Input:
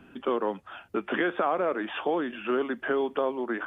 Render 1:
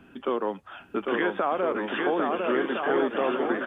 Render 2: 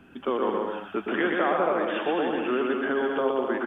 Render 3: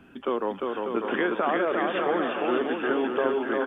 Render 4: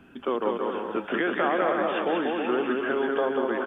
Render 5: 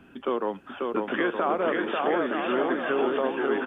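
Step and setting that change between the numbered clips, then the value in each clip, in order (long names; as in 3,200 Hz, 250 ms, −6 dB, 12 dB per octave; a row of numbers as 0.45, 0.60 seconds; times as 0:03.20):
bouncing-ball delay, first gap: 800, 120, 350, 190, 540 milliseconds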